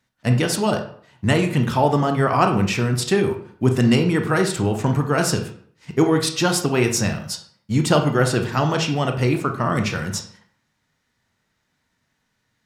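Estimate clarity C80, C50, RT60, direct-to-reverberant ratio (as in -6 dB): 12.5 dB, 9.0 dB, 0.55 s, 4.5 dB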